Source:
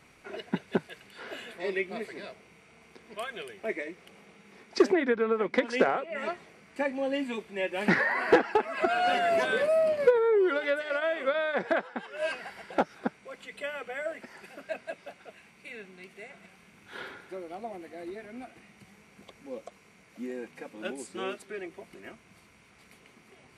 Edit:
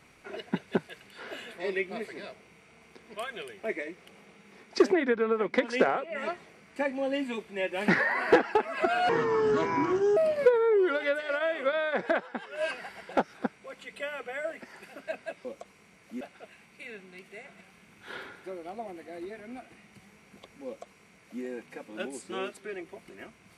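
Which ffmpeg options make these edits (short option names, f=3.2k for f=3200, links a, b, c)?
-filter_complex "[0:a]asplit=5[a][b][c][d][e];[a]atrim=end=9.094[f];[b]atrim=start=9.09:end=9.78,asetpts=PTS-STARTPTS,asetrate=28224,aresample=44100,atrim=end_sample=47545,asetpts=PTS-STARTPTS[g];[c]atrim=start=9.776:end=15.062[h];[d]atrim=start=19.508:end=20.272[i];[e]atrim=start=15.058[j];[f][g]acrossfade=d=0.004:c1=hsin:c2=hsin[k];[k][h]acrossfade=d=0.004:c1=hsin:c2=hsin[l];[l][i]acrossfade=d=0.004:c1=hsin:c2=hsin[m];[m][j]acrossfade=d=0.004:c1=hsin:c2=hsin"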